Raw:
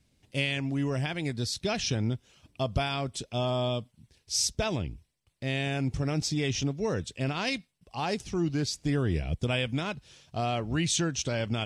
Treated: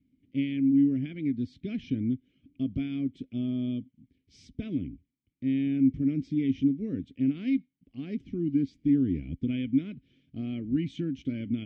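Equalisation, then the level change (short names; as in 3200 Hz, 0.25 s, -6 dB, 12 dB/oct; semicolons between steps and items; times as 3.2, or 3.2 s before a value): vowel filter i; tilt -4.5 dB/oct; +3.0 dB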